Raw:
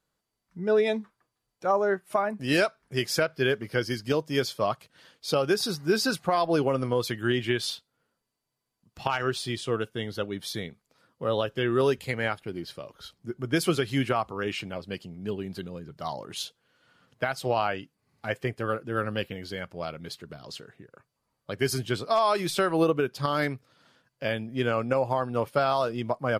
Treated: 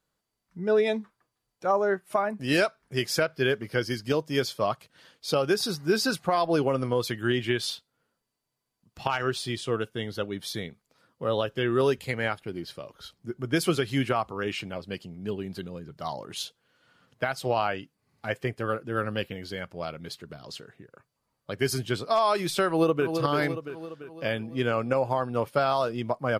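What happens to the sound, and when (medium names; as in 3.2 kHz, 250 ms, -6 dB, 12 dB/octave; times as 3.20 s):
22.67–23.08 s: echo throw 340 ms, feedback 55%, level -6.5 dB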